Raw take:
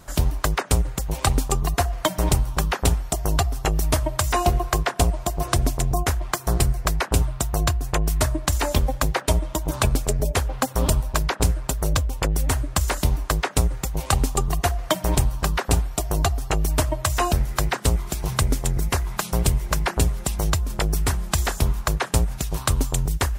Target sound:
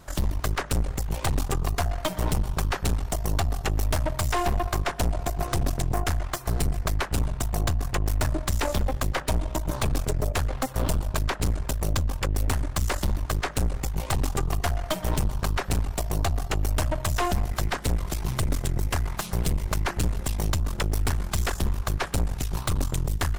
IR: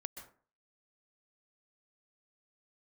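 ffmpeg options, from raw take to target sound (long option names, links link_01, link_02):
-filter_complex "[0:a]asplit=2[link_01][link_02];[1:a]atrim=start_sample=2205,lowpass=6500[link_03];[link_02][link_03]afir=irnorm=-1:irlink=0,volume=-5dB[link_04];[link_01][link_04]amix=inputs=2:normalize=0,aeval=exprs='(tanh(11.2*val(0)+0.75)-tanh(0.75))/11.2':channel_layout=same"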